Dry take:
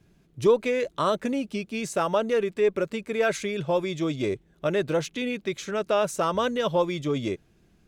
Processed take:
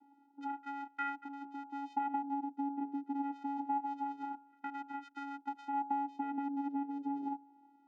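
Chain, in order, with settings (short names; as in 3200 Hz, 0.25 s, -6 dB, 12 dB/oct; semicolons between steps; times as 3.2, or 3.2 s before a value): de-hum 138.6 Hz, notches 4; vocoder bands 4, square 280 Hz; compressor 5:1, threshold -37 dBFS, peak gain reduction 19.5 dB; LFO band-pass sine 0.26 Hz 510–1500 Hz; gain +11 dB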